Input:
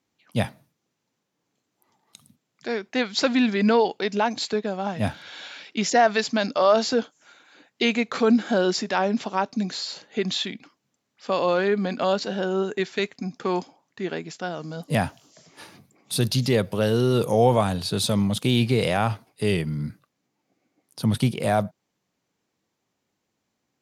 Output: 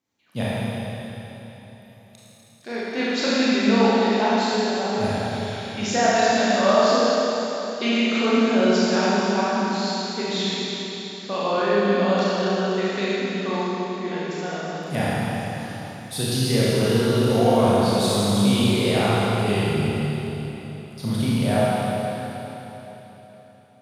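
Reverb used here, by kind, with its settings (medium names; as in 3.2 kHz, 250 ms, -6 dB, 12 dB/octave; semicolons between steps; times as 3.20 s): Schroeder reverb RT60 3.8 s, combs from 27 ms, DRR -9 dB; trim -6.5 dB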